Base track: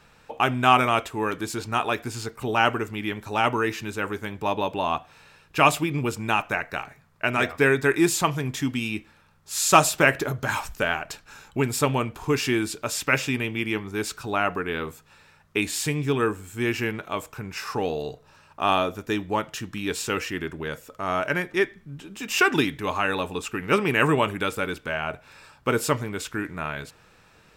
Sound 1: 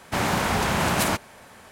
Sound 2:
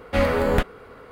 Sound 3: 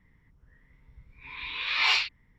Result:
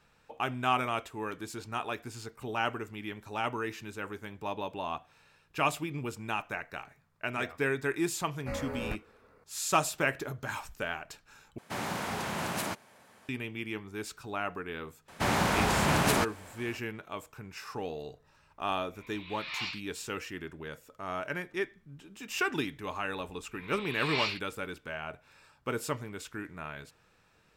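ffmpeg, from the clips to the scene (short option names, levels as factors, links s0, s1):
-filter_complex "[1:a]asplit=2[s0][s1];[3:a]asplit=2[s2][s3];[0:a]volume=0.299[s4];[2:a]asuperstop=centerf=3300:order=4:qfactor=2.2[s5];[s0]highpass=110[s6];[s1]highshelf=f=9800:g=-3.5[s7];[s4]asplit=2[s8][s9];[s8]atrim=end=11.584[s10];[s6]atrim=end=1.71,asetpts=PTS-STARTPTS,volume=0.282[s11];[s9]atrim=start=13.286[s12];[s5]atrim=end=1.11,asetpts=PTS-STARTPTS,volume=0.141,afade=t=in:d=0.004:c=hsin,afade=t=out:st=1.106:d=0.004:c=hsin,adelay=8330[s13];[s7]atrim=end=1.71,asetpts=PTS-STARTPTS,volume=0.668,afade=t=in:d=0.004:c=hsin,afade=t=out:st=1.706:d=0.004:c=hsin,adelay=665028S[s14];[s2]atrim=end=2.38,asetpts=PTS-STARTPTS,volume=0.224,afade=t=in:d=0.004:c=hsin,afade=t=out:st=2.376:d=0.004:c=hsin,adelay=17720[s15];[s3]atrim=end=2.38,asetpts=PTS-STARTPTS,volume=0.376,afade=t=in:d=0.004:c=hsin,afade=t=out:st=2.376:d=0.004:c=hsin,adelay=22310[s16];[s10][s11]acrossfade=d=0.004:c1=hsin:c2=hsin[s17];[s17][s12]acrossfade=d=0.004:c1=hsin:c2=hsin[s18];[s18][s13][s14][s15][s16]amix=inputs=5:normalize=0"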